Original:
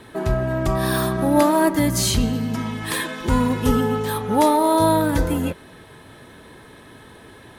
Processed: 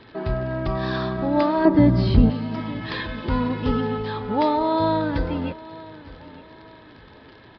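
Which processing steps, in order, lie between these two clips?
crackle 45/s -29 dBFS; downsampling 11025 Hz; 1.65–2.3 tilt shelf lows +9.5 dB, about 1500 Hz; on a send: feedback echo 0.913 s, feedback 34%, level -19 dB; on the sum: gain -4 dB

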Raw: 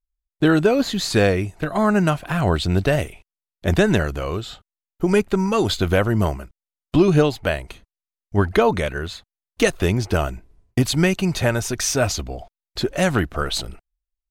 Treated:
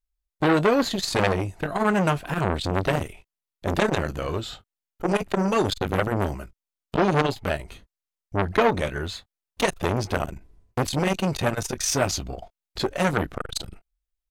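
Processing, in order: doubler 21 ms -13 dB; core saturation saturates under 1500 Hz

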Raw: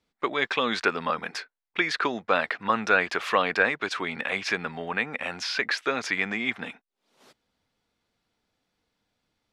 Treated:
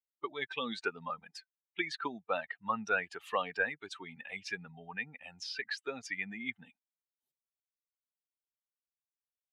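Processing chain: per-bin expansion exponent 2; gain -6.5 dB

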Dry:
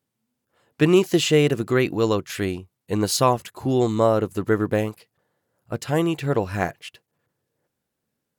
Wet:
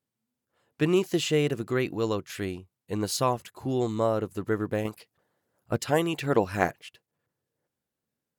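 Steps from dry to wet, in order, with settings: 4.85–6.82 harmonic-percussive split percussive +8 dB; gain -7 dB

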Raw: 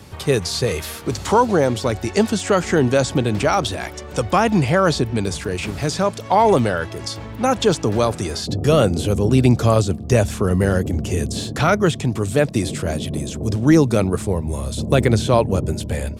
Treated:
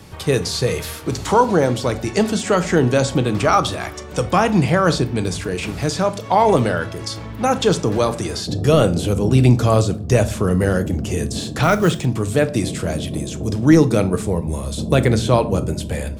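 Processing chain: 3.25–4.01 bell 1200 Hz +9.5 dB 0.21 oct; shoebox room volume 390 m³, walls furnished, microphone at 0.6 m; 11.63–12.05 companded quantiser 6-bit

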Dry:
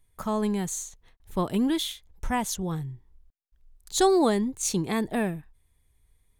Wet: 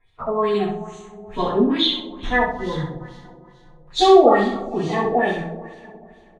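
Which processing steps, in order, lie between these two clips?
bin magnitudes rounded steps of 30 dB; two-slope reverb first 0.38 s, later 2.7 s, from -18 dB, DRR -9 dB; LFO low-pass sine 2.3 Hz 550–3900 Hz; on a send: feedback echo 65 ms, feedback 30%, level -6 dB; on the sum: gain -4 dB

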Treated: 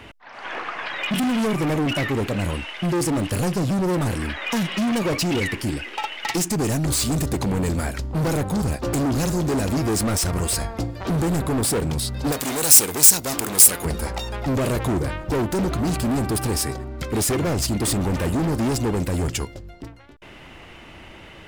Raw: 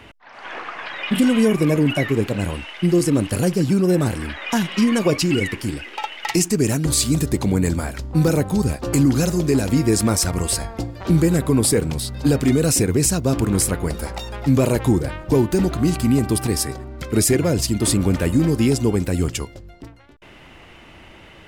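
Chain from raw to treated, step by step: overloaded stage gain 21 dB; 12.32–13.85 RIAA curve recording; gain +1.5 dB

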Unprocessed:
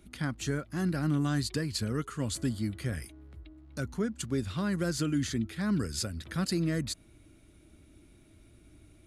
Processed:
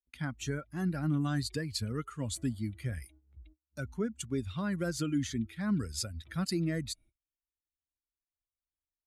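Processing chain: per-bin expansion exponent 1.5; gate -57 dBFS, range -36 dB

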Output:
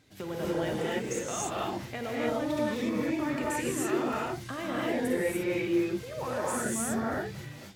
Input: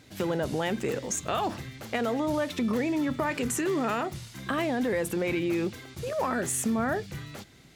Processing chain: non-linear reverb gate 0.32 s rising, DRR -6 dB; gain -9 dB

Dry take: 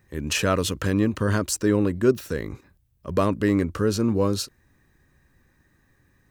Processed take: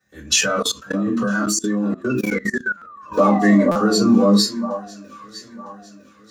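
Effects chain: dynamic EQ 240 Hz, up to +3 dB, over -34 dBFS, Q 7; 2.09–4.08 painted sound fall 370–2700 Hz -36 dBFS; weighting filter A; echo with dull and thin repeats by turns 0.477 s, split 1300 Hz, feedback 73%, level -10 dB; reverb RT60 0.40 s, pre-delay 3 ms, DRR -11 dB; spectral noise reduction 13 dB; limiter -5.5 dBFS, peak gain reduction 6 dB; 0.41–3.12 level quantiser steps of 20 dB; stuck buffer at 2.77/3.71, samples 256, times 7

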